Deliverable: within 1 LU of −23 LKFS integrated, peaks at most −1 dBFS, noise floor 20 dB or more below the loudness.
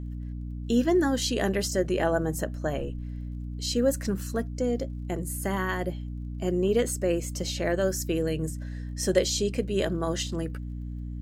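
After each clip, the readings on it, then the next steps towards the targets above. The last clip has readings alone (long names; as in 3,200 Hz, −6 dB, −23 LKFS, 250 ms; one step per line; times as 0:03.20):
crackle rate 21 per second; mains hum 60 Hz; hum harmonics up to 300 Hz; level of the hum −32 dBFS; integrated loudness −28.5 LKFS; sample peak −8.5 dBFS; target loudness −23.0 LKFS
→ click removal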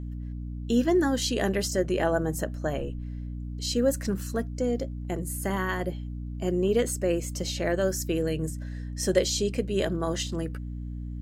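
crackle rate 0.089 per second; mains hum 60 Hz; hum harmonics up to 300 Hz; level of the hum −32 dBFS
→ hum removal 60 Hz, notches 5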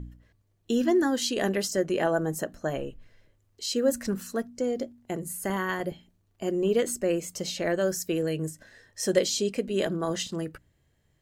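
mains hum none found; integrated loudness −28.5 LKFS; sample peak −8.5 dBFS; target loudness −23.0 LKFS
→ level +5.5 dB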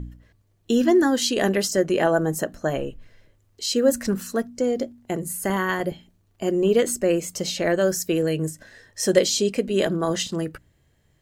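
integrated loudness −23.0 LKFS; sample peak −3.0 dBFS; background noise floor −64 dBFS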